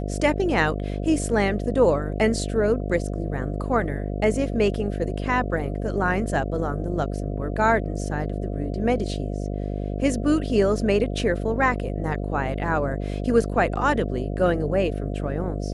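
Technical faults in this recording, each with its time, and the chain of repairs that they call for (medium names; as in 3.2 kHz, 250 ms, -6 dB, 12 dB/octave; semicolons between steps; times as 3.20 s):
buzz 50 Hz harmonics 14 -28 dBFS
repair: de-hum 50 Hz, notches 14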